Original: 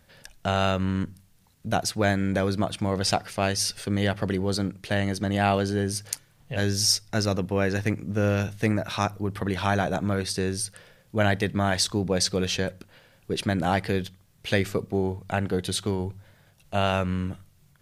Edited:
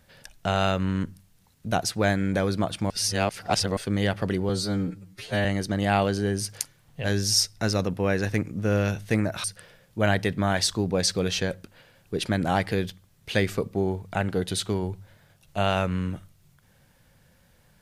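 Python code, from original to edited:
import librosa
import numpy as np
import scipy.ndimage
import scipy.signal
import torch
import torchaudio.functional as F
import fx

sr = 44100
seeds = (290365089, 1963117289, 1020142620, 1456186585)

y = fx.edit(x, sr, fx.reverse_span(start_s=2.9, length_s=0.87),
    fx.stretch_span(start_s=4.49, length_s=0.48, factor=2.0),
    fx.cut(start_s=8.96, length_s=1.65), tone=tone)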